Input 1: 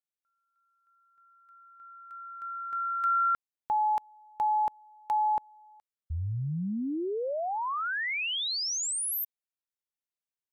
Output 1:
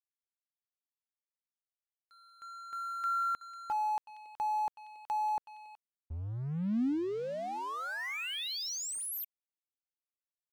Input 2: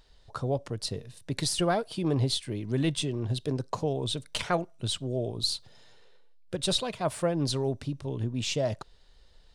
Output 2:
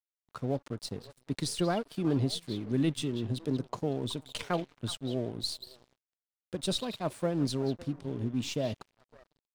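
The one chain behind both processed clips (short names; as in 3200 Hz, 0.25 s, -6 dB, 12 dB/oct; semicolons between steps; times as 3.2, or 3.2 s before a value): delay with a stepping band-pass 0.186 s, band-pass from 3200 Hz, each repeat -1.4 oct, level -9 dB; dynamic EQ 250 Hz, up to +8 dB, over -45 dBFS, Q 1.4; crossover distortion -44.5 dBFS; gain -5 dB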